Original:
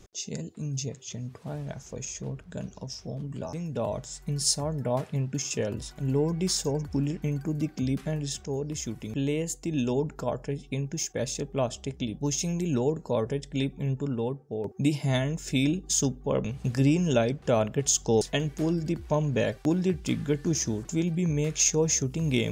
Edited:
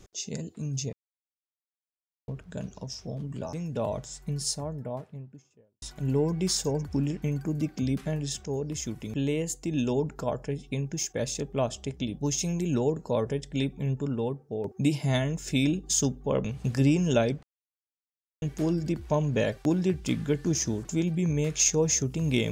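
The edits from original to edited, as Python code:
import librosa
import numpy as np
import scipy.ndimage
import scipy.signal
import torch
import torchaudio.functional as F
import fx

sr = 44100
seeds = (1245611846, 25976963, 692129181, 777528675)

y = fx.studio_fade_out(x, sr, start_s=3.86, length_s=1.96)
y = fx.edit(y, sr, fx.silence(start_s=0.93, length_s=1.35),
    fx.silence(start_s=17.43, length_s=0.99), tone=tone)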